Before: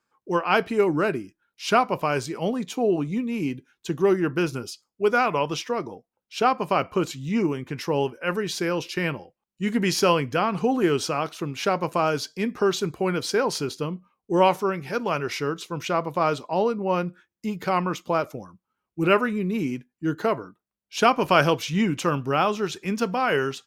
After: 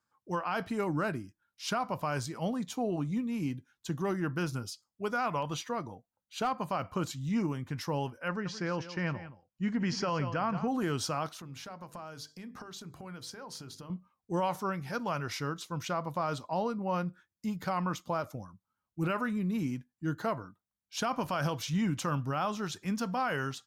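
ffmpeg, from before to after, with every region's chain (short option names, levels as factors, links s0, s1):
-filter_complex "[0:a]asettb=1/sr,asplit=3[s0][s1][s2];[s0]atrim=end=5.424[s3];[s1]atrim=start=5.42:end=6.7,asetpts=PTS-STARTPTS,afade=t=in:d=0.004:c=qsin,afade=t=out:st=1.276:d=0.004:c=qsin,asuperstop=centerf=5300:order=20:qfactor=7.7,asoftclip=type=hard:threshold=0.224[s4];[s2]atrim=start=6.696[s5];[s3][s4]acrossfade=d=0.004:c1=hsin:c2=qsin[s6];[s6][s5]acrossfade=d=0.004:c1=qsin:c2=hsin,asettb=1/sr,asplit=3[s7][s8][s9];[s7]atrim=end=8.284[s10];[s8]atrim=start=8.28:end=10.68,asetpts=PTS-STARTPTS,afade=t=in:d=0.004:c=qsin,afade=t=out:st=2.396:d=0.004:c=qsin,lowpass=f=5300:w=0.5412,lowpass=f=5300:w=1.3066,equalizer=f=3700:w=3.5:g=-11.5,aecho=1:1:173:0.211,atrim=end_sample=105840[s11];[s9]atrim=start=10.676[s12];[s10][s11]acrossfade=d=0.004:c1=hsin:c2=qsin[s13];[s13][s12]acrossfade=d=0.004:c1=qsin:c2=hsin,asettb=1/sr,asplit=3[s14][s15][s16];[s14]atrim=end=11.404[s17];[s15]atrim=start=11.4:end=13.9,asetpts=PTS-STARTPTS,afade=t=in:d=0.004:c=qsin,afade=t=out:st=2.496:d=0.004:c=qsin,acompressor=threshold=0.0158:ratio=4:attack=3.2:release=140:knee=1:detection=peak,bandreject=f=50:t=h:w=6,bandreject=f=100:t=h:w=6,bandreject=f=150:t=h:w=6,bandreject=f=200:t=h:w=6,bandreject=f=250:t=h:w=6,bandreject=f=300:t=h:w=6,bandreject=f=350:t=h:w=6,bandreject=f=400:t=h:w=6,bandreject=f=450:t=h:w=6,bandreject=f=500:t=h:w=6[s18];[s16]atrim=start=13.896[s19];[s17][s18]acrossfade=d=0.004:c1=hsin:c2=qsin[s20];[s20][s19]acrossfade=d=0.004:c1=qsin:c2=hsin,equalizer=f=100:t=o:w=0.67:g=7,equalizer=f=400:t=o:w=0.67:g=-10,equalizer=f=2500:t=o:w=0.67:g=-7,alimiter=limit=0.126:level=0:latency=1:release=58,volume=0.596"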